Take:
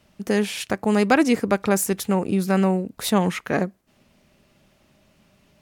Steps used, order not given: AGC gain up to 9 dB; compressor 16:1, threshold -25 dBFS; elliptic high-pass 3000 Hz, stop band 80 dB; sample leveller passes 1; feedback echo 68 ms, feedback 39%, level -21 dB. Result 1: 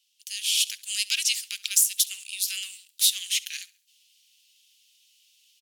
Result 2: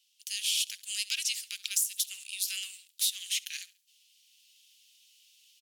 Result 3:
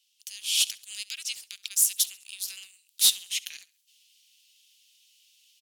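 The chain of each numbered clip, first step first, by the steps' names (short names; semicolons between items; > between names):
sample leveller > elliptic high-pass > compressor > feedback echo > AGC; feedback echo > sample leveller > AGC > elliptic high-pass > compressor; compressor > elliptic high-pass > sample leveller > feedback echo > AGC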